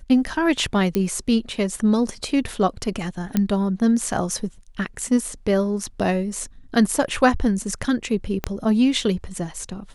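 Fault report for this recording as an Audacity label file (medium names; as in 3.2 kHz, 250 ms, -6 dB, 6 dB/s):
0.950000	0.950000	pop -9 dBFS
3.370000	3.370000	pop -7 dBFS
8.440000	8.440000	pop -9 dBFS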